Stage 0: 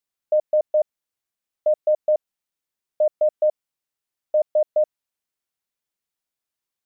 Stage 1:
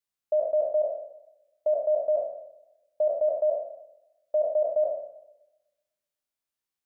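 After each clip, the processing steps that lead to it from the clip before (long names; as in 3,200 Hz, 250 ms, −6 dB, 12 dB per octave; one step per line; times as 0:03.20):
peak hold with a decay on every bin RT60 0.70 s
feedback echo with a swinging delay time 125 ms, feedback 48%, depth 73 cents, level −20 dB
level −5.5 dB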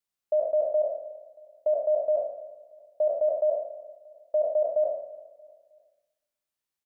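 repeating echo 315 ms, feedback 43%, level −20 dB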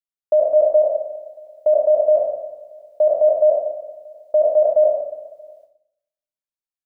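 noise gate with hold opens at −50 dBFS
on a send at −9 dB: convolution reverb RT60 0.40 s, pre-delay 59 ms
on the sum: level +9 dB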